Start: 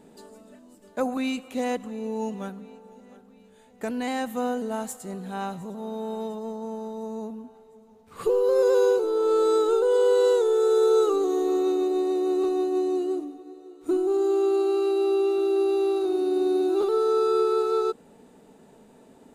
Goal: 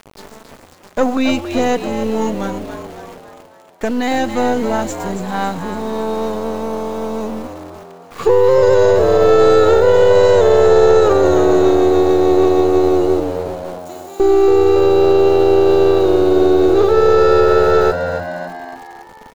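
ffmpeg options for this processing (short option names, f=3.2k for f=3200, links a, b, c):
-filter_complex "[0:a]aeval=exprs='if(lt(val(0),0),0.447*val(0),val(0))':c=same,aresample=16000,aresample=44100,aeval=exprs='val(0)*gte(abs(val(0)),0.00447)':c=same,asettb=1/sr,asplit=3[a][b][c];[a]atrim=end=13.784[d];[b]atrim=start=13.78:end=14.2,asetpts=PTS-STARTPTS,afade=t=in:d=0.004:c=qsin,afade=t=out:st=0.416:d=0.004:c=qsin,aderivative[e];[c]atrim=start=14.196[f];[d][e]acrossfade=d=0.004:c1=hsin:c2=qsin[g];[g][f]acrossfade=d=0.004:c1=qsin:c2=hsin,asplit=2[h][i];[i]asplit=6[j][k][l][m][n][o];[j]adelay=278,afreqshift=87,volume=-9.5dB[p];[k]adelay=556,afreqshift=174,volume=-14.9dB[q];[l]adelay=834,afreqshift=261,volume=-20.2dB[r];[m]adelay=1112,afreqshift=348,volume=-25.6dB[s];[n]adelay=1390,afreqshift=435,volume=-30.9dB[t];[o]adelay=1668,afreqshift=522,volume=-36.3dB[u];[p][q][r][s][t][u]amix=inputs=6:normalize=0[v];[h][v]amix=inputs=2:normalize=0,alimiter=level_in=15dB:limit=-1dB:release=50:level=0:latency=1,volume=-1dB"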